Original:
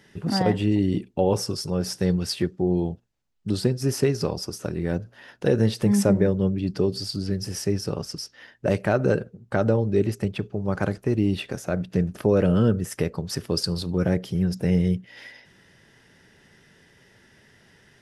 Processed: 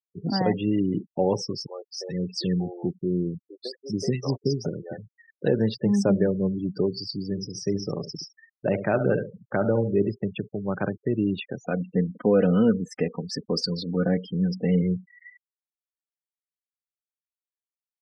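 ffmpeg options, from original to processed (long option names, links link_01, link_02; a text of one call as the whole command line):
ffmpeg -i in.wav -filter_complex "[0:a]asettb=1/sr,asplit=3[link_01][link_02][link_03];[link_01]atrim=end=1.664[link_04];[link_02]atrim=start=1.66:end=4.98,asetpts=PTS-STARTPTS,afade=type=in:duration=0.004:curve=qsin,afade=type=out:start_time=3.316:duration=0.004:curve=qsin,acrossover=split=490|1600[link_05][link_06][link_07];[link_07]adelay=80[link_08];[link_05]adelay=430[link_09];[link_09][link_06][link_08]amix=inputs=3:normalize=0,atrim=end_sample=146412[link_10];[link_03]atrim=start=4.976[link_11];[link_04][link_10]acrossfade=duration=0.004:curve1=hsin:curve2=qsin[link_12];[link_12][link_11]acrossfade=duration=0.004:curve1=qsin:curve2=hsin,asettb=1/sr,asplit=3[link_13][link_14][link_15];[link_13]atrim=end=7.274[link_16];[link_14]atrim=start=7.27:end=10.12,asetpts=PTS-STARTPTS,afade=type=in:duration=0.004:curve=qsin,afade=type=out:start_time=2.846:duration=0.004:curve=qsin,aecho=1:1:70|140|210:0.316|0.0759|0.0182,atrim=end_sample=125685[link_17];[link_15]atrim=start=10.116[link_18];[link_16][link_17]acrossfade=duration=0.004:curve1=hsin:curve2=qsin[link_19];[link_19][link_18]acrossfade=duration=0.004:curve1=qsin:curve2=hsin,asettb=1/sr,asplit=3[link_20][link_21][link_22];[link_20]atrim=end=11.634[link_23];[link_21]atrim=start=11.63:end=14.82,asetpts=PTS-STARTPTS,afade=type=in:duration=0.004:curve=qsin,afade=type=out:start_time=3.186:duration=0.004:curve=qsin,aecho=1:1:4.1:0.64,atrim=end_sample=140679[link_24];[link_22]atrim=start=14.816[link_25];[link_23][link_24]acrossfade=duration=0.004:curve1=hsin:curve2=qsin[link_26];[link_26][link_25]acrossfade=duration=0.004:curve1=qsin:curve2=hsin,highpass=frequency=120:width=0.5412,highpass=frequency=120:width=1.3066,afftfilt=real='re*gte(hypot(re,im),0.0316)':imag='im*gte(hypot(re,im),0.0316)':win_size=1024:overlap=0.75,lowpass=frequency=6700:width=0.5412,lowpass=frequency=6700:width=1.3066,volume=-1.5dB" out.wav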